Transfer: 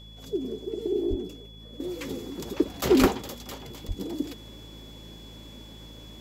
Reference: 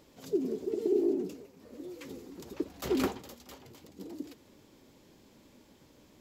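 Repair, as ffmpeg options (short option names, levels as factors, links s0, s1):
-filter_complex "[0:a]bandreject=f=54.3:t=h:w=4,bandreject=f=108.6:t=h:w=4,bandreject=f=162.9:t=h:w=4,bandreject=f=217.2:t=h:w=4,bandreject=f=3400:w=30,asplit=3[s0][s1][s2];[s0]afade=t=out:st=1.09:d=0.02[s3];[s1]highpass=f=140:w=0.5412,highpass=f=140:w=1.3066,afade=t=in:st=1.09:d=0.02,afade=t=out:st=1.21:d=0.02[s4];[s2]afade=t=in:st=1.21:d=0.02[s5];[s3][s4][s5]amix=inputs=3:normalize=0,asplit=3[s6][s7][s8];[s6]afade=t=out:st=3:d=0.02[s9];[s7]highpass=f=140:w=0.5412,highpass=f=140:w=1.3066,afade=t=in:st=3:d=0.02,afade=t=out:st=3.12:d=0.02[s10];[s8]afade=t=in:st=3.12:d=0.02[s11];[s9][s10][s11]amix=inputs=3:normalize=0,asplit=3[s12][s13][s14];[s12]afade=t=out:st=3.87:d=0.02[s15];[s13]highpass=f=140:w=0.5412,highpass=f=140:w=1.3066,afade=t=in:st=3.87:d=0.02,afade=t=out:st=3.99:d=0.02[s16];[s14]afade=t=in:st=3.99:d=0.02[s17];[s15][s16][s17]amix=inputs=3:normalize=0,asetnsamples=n=441:p=0,asendcmd='1.8 volume volume -10dB',volume=1"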